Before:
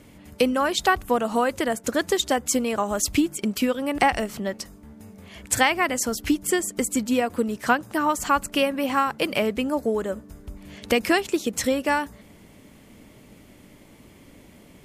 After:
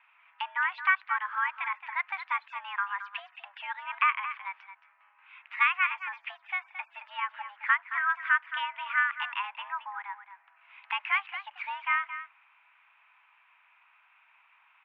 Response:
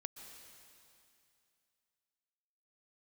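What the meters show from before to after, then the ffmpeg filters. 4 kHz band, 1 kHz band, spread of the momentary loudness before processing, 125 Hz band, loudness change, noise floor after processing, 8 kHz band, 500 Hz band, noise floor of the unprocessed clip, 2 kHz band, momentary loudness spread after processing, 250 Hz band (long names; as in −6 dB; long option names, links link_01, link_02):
−12.0 dB, −6.0 dB, 8 LU, below −40 dB, −6.5 dB, −64 dBFS, below −40 dB, below −35 dB, −51 dBFS, 0.0 dB, 15 LU, below −40 dB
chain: -af "highpass=frequency=600:width_type=q:width=0.5412,highpass=frequency=600:width_type=q:width=1.307,lowpass=frequency=2100:width_type=q:width=0.5176,lowpass=frequency=2100:width_type=q:width=0.7071,lowpass=frequency=2100:width_type=q:width=1.932,afreqshift=390,tiltshelf=frequency=1400:gain=-7.5,aecho=1:1:221:0.266,volume=-4dB"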